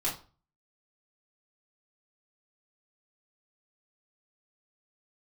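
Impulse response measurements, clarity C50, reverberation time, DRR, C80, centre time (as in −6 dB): 9.0 dB, 0.35 s, −8.0 dB, 14.5 dB, 26 ms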